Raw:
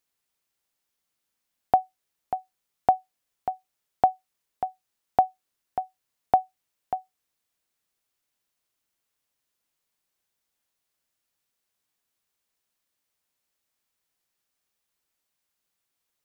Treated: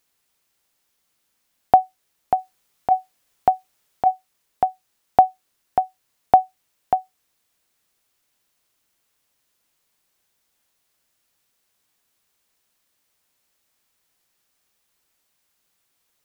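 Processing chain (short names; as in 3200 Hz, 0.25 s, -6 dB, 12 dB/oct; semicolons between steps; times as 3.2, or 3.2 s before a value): in parallel at +3 dB: limiter -15 dBFS, peak gain reduction 7.5 dB; 2.38–4.11 on the sum: negative-ratio compressor -15 dBFS, ratio -0.5; gain +2 dB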